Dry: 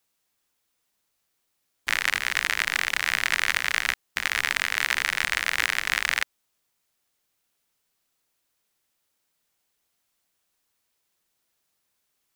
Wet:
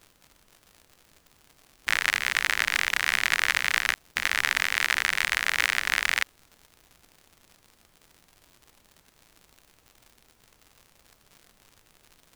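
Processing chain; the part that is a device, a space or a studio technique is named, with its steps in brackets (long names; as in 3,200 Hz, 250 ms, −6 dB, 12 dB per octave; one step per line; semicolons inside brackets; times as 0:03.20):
vinyl LP (tape wow and flutter; surface crackle 120 per second −39 dBFS; pink noise bed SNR 33 dB)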